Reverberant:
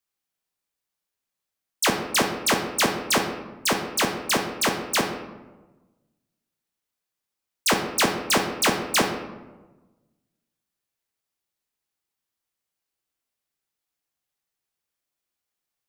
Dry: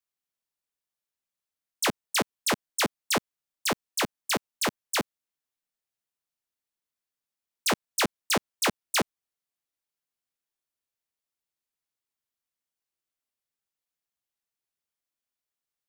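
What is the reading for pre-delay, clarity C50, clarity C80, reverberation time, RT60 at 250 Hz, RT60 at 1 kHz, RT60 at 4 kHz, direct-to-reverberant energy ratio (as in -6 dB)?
17 ms, 6.0 dB, 8.5 dB, 1.2 s, 1.5 s, 1.1 s, 0.60 s, 3.5 dB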